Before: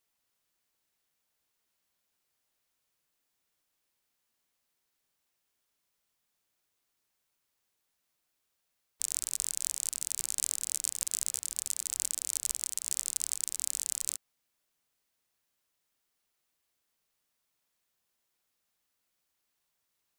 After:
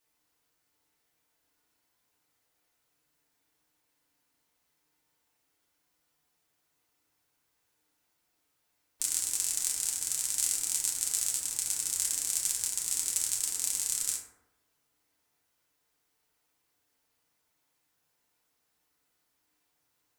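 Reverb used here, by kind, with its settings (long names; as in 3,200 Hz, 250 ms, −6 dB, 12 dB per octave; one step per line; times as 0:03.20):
feedback delay network reverb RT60 0.96 s, low-frequency decay 1×, high-frequency decay 0.35×, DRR −4.5 dB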